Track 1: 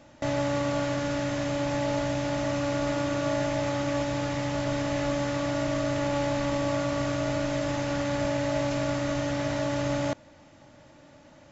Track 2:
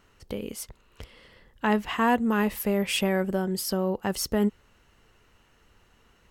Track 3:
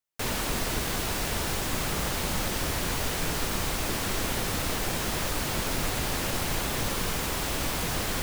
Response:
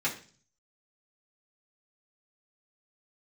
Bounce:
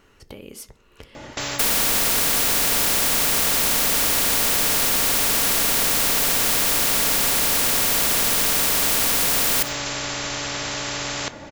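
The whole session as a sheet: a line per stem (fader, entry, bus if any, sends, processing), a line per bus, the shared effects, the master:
−5.5 dB, 1.15 s, send −19.5 dB, no processing
−17.0 dB, 0.00 s, send −14.5 dB, downward compressor 1.5 to 1, threshold −49 dBFS, peak gain reduction 11 dB
+3.0 dB, 1.40 s, send −19 dB, high-shelf EQ 12,000 Hz +12 dB; comb filter 4.3 ms, depth 74%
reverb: on, RT60 0.40 s, pre-delay 3 ms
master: parametric band 400 Hz +4.5 dB; every bin compressed towards the loudest bin 4 to 1

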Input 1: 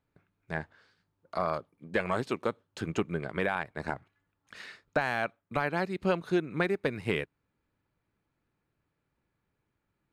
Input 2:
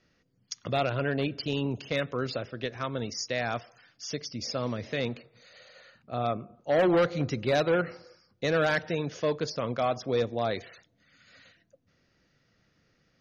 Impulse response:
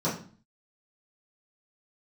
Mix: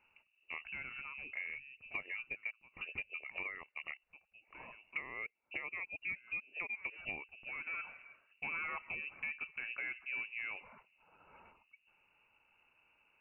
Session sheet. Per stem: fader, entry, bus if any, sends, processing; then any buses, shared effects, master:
+1.0 dB, 0.00 s, no send, low-pass that shuts in the quiet parts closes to 1,600 Hz, open at −30.5 dBFS; reverb reduction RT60 0.67 s; phaser with its sweep stopped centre 530 Hz, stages 4
−3.0 dB, 0.00 s, no send, automatic ducking −22 dB, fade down 2.00 s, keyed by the first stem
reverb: not used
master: voice inversion scrambler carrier 2,800 Hz; downward compressor 2.5 to 1, threshold −44 dBFS, peak gain reduction 13.5 dB

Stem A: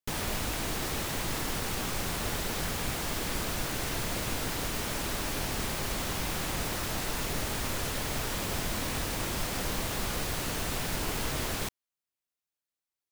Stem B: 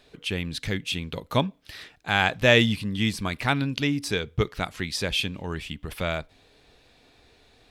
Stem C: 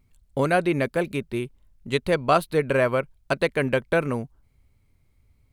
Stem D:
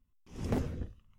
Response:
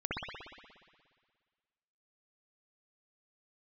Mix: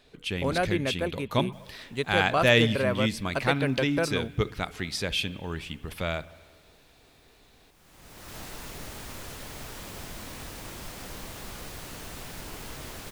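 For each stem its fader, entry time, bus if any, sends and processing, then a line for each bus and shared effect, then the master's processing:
−8.0 dB, 1.45 s, no send, automatic ducking −22 dB, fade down 1.90 s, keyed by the second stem
−3.0 dB, 0.00 s, send −23 dB, no processing
−6.0 dB, 0.05 s, no send, no processing
−11.0 dB, 0.00 s, no send, no processing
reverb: on, RT60 1.7 s, pre-delay 59 ms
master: no processing

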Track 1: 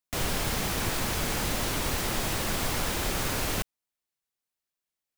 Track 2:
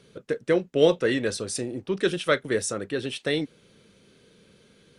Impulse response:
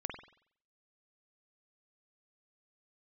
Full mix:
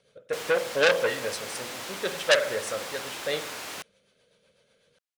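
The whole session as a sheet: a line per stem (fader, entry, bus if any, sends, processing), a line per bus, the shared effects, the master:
−5.5 dB, 0.20 s, no send, meter weighting curve A
+3.0 dB, 0.00 s, send −3.5 dB, rotating-speaker cabinet horn 8 Hz; low shelf with overshoot 440 Hz −8 dB, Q 3; expander for the loud parts 1.5 to 1, over −38 dBFS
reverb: on, pre-delay 46 ms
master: saturating transformer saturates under 3,800 Hz

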